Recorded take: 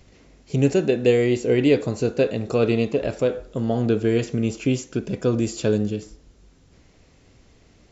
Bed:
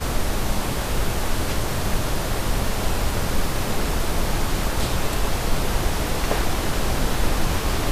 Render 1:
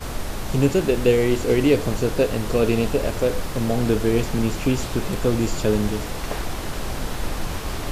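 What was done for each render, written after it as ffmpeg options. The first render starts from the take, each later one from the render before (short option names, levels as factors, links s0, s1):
-filter_complex "[1:a]volume=0.531[s0];[0:a][s0]amix=inputs=2:normalize=0"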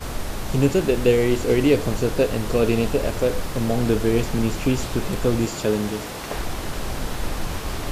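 -filter_complex "[0:a]asettb=1/sr,asplit=3[s0][s1][s2];[s0]atrim=end=5.454[s3];[s1]atrim=start=5.45:end=6.33,asetpts=PTS-STARTPTS,afade=t=in:d=0.004:c=qsin,afade=t=out:st=0.876:d=0.004:c=qsin,highpass=f=160:p=1[s4];[s2]atrim=start=6.326[s5];[s3][s4]acrossfade=d=0.004:c1=hsin:c2=qsin[s6];[s6][s5]acrossfade=d=0.004:c1=qsin:c2=hsin"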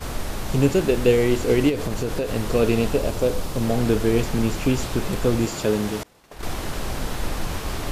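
-filter_complex "[0:a]asettb=1/sr,asplit=3[s0][s1][s2];[s0]atrim=end=1.694[s3];[s1]atrim=start=1.69:end=2.35,asetpts=PTS-STARTPTS,afade=t=in:d=0.004:c=qsin,afade=t=out:st=0.656:d=0.004:c=qsin,acompressor=threshold=0.1:ratio=6:attack=3.2:release=140:knee=1:detection=peak[s4];[s2]atrim=start=2.346[s5];[s3][s4]acrossfade=d=0.004:c1=hsin:c2=qsin[s6];[s6][s5]acrossfade=d=0.004:c1=qsin:c2=hsin,asettb=1/sr,asplit=3[s7][s8][s9];[s7]atrim=end=2.994[s10];[s8]atrim=start=2.99:end=3.63,asetpts=PTS-STARTPTS,afade=t=in:d=0.004:c=qsin,afade=t=out:st=0.636:d=0.004:c=qsin,equalizer=f=1800:w=1.5:g=-5.5[s11];[s9]atrim=start=3.626[s12];[s10][s11]acrossfade=d=0.004:c1=hsin:c2=qsin[s13];[s13][s12]acrossfade=d=0.004:c1=qsin:c2=hsin,asettb=1/sr,asplit=3[s14][s15][s16];[s14]atrim=end=6.034[s17];[s15]atrim=start=6.03:end=6.43,asetpts=PTS-STARTPTS,afade=t=in:d=0.004:c=qsin,afade=t=out:st=0.396:d=0.004:c=qsin,agate=range=0.0224:threshold=0.112:ratio=3:release=100:detection=peak[s18];[s16]atrim=start=6.426[s19];[s17][s18]acrossfade=d=0.004:c1=hsin:c2=qsin[s20];[s20][s19]acrossfade=d=0.004:c1=qsin:c2=hsin"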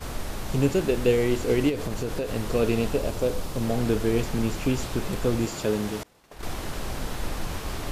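-af "volume=0.631"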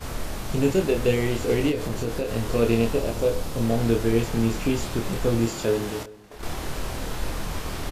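-filter_complex "[0:a]asplit=2[s0][s1];[s1]adelay=26,volume=0.631[s2];[s0][s2]amix=inputs=2:normalize=0,asplit=2[s3][s4];[s4]adelay=384.8,volume=0.0891,highshelf=f=4000:g=-8.66[s5];[s3][s5]amix=inputs=2:normalize=0"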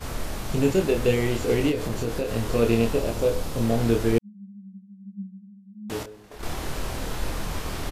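-filter_complex "[0:a]asettb=1/sr,asplit=3[s0][s1][s2];[s0]atrim=end=4.184[s3];[s1]atrim=start=4.18:end=5.9,asetpts=PTS-STARTPTS,afade=t=in:d=0.004:c=qsin,afade=t=out:st=1.716:d=0.004:c=qsin,asuperpass=centerf=200:order=20:qfactor=7.7[s4];[s2]atrim=start=5.896[s5];[s3][s4]acrossfade=d=0.004:c1=hsin:c2=qsin[s6];[s6][s5]acrossfade=d=0.004:c1=qsin:c2=hsin"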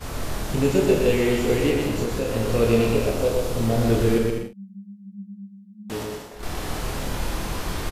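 -filter_complex "[0:a]asplit=2[s0][s1];[s1]adelay=45,volume=0.376[s2];[s0][s2]amix=inputs=2:normalize=0,aecho=1:1:120|198|248.7|281.7|303.1:0.631|0.398|0.251|0.158|0.1"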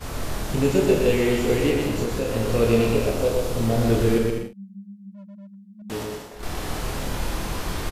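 -filter_complex "[0:a]asettb=1/sr,asplit=3[s0][s1][s2];[s0]atrim=end=5.124[s3];[s1]atrim=start=5.12:end=5.82,asetpts=PTS-STARTPTS,afade=t=in:d=0.004:c=qsin,afade=t=out:st=0.696:d=0.004:c=qsin,asoftclip=type=hard:threshold=0.0106[s4];[s2]atrim=start=5.816[s5];[s3][s4]acrossfade=d=0.004:c1=hsin:c2=qsin[s6];[s6][s5]acrossfade=d=0.004:c1=qsin:c2=hsin"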